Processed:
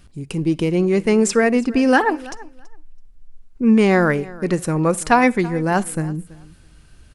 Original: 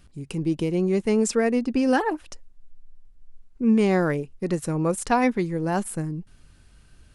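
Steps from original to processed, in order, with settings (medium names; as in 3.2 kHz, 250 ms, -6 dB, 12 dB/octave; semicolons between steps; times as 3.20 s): dynamic bell 1.7 kHz, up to +5 dB, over -41 dBFS, Q 0.84; feedback delay 330 ms, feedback 16%, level -20.5 dB; on a send at -23 dB: reverberation RT60 0.30 s, pre-delay 44 ms; on the sum: trim +5 dB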